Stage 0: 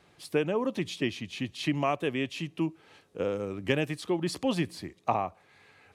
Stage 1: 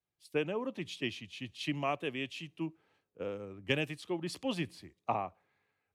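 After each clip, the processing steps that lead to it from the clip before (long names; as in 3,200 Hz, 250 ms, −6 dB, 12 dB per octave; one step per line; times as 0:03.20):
dynamic equaliser 2,800 Hz, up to +5 dB, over −50 dBFS, Q 1.7
multiband upward and downward expander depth 70%
level −7.5 dB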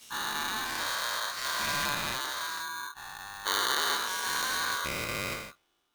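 every bin's largest magnitude spread in time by 480 ms
parametric band 600 Hz −13.5 dB 1.4 octaves
ring modulator with a square carrier 1,300 Hz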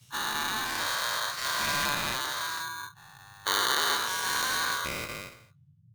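fade-out on the ending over 1.31 s
noise gate −37 dBFS, range −11 dB
noise in a band 92–160 Hz −61 dBFS
level +2 dB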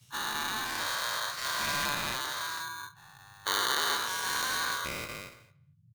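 far-end echo of a speakerphone 230 ms, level −23 dB
level −2.5 dB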